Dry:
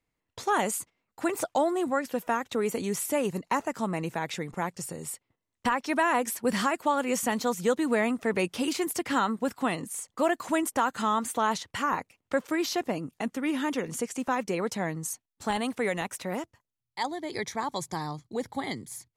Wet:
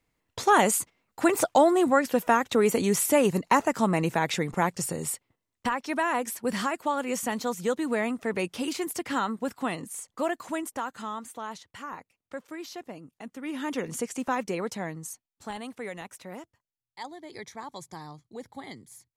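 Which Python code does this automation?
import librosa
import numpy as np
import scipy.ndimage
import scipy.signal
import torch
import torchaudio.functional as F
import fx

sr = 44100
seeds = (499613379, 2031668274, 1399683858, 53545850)

y = fx.gain(x, sr, db=fx.line((5.05, 6.0), (5.73, -2.0), (10.1, -2.0), (11.41, -11.0), (13.21, -11.0), (13.81, 0.0), (14.38, 0.0), (15.57, -8.5)))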